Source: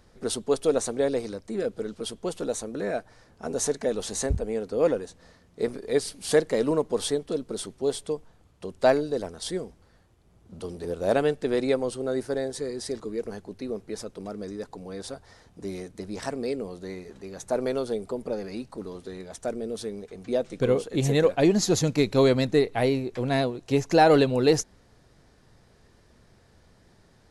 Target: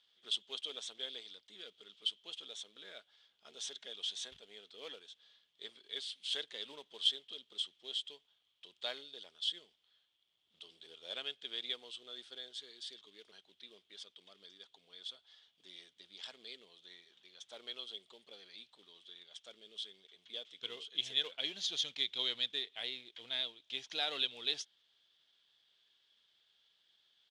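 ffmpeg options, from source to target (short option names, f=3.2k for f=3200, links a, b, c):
-filter_complex "[0:a]asplit=2[a][b];[b]acrusher=bits=4:mode=log:mix=0:aa=0.000001,volume=-6.5dB[c];[a][c]amix=inputs=2:normalize=0,bandpass=f=3.5k:t=q:w=10:csg=0,asetrate=41625,aresample=44100,atempo=1.05946,aeval=exprs='0.0841*(cos(1*acos(clip(val(0)/0.0841,-1,1)))-cos(1*PI/2))+0.000531*(cos(7*acos(clip(val(0)/0.0841,-1,1)))-cos(7*PI/2))':c=same,volume=4.5dB"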